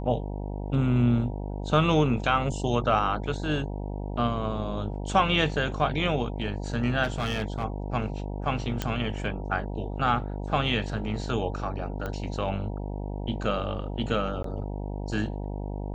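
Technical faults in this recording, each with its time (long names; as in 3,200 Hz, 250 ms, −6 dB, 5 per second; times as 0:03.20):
mains buzz 50 Hz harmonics 19 −33 dBFS
0:07.03–0:07.65: clipping −23 dBFS
0:08.82: click −13 dBFS
0:12.06: click −20 dBFS
0:14.43–0:14.44: drop-out 13 ms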